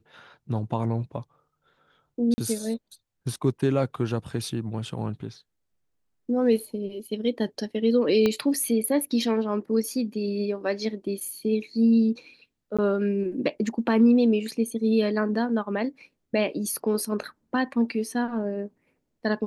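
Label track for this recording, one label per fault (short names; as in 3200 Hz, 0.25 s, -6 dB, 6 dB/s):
2.340000	2.380000	gap 40 ms
8.260000	8.260000	pop -11 dBFS
12.770000	12.790000	gap 16 ms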